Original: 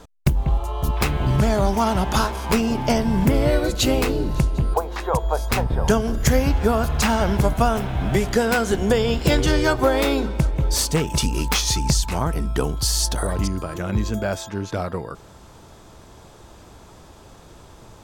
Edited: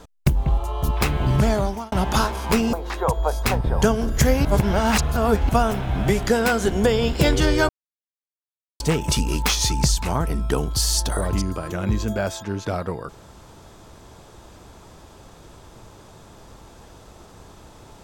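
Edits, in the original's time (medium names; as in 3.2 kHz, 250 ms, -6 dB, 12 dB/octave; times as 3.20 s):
1.50–1.92 s: fade out linear
2.73–4.79 s: delete
6.51–7.55 s: reverse
9.75–10.86 s: mute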